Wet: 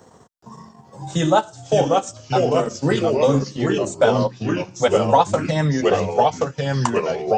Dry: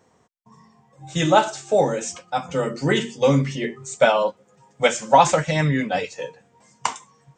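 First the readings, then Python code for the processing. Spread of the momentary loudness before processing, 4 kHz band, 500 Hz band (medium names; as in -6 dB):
13 LU, -0.5 dB, +3.0 dB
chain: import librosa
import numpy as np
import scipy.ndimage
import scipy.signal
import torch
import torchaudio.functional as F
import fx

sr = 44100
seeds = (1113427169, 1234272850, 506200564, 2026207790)

y = fx.peak_eq(x, sr, hz=2300.0, db=-9.5, octaves=0.61)
y = fx.transient(y, sr, attack_db=1, sustain_db=-11)
y = fx.echo_pitch(y, sr, ms=424, semitones=-2, count=3, db_per_echo=-3.0)
y = fx.band_squash(y, sr, depth_pct=40)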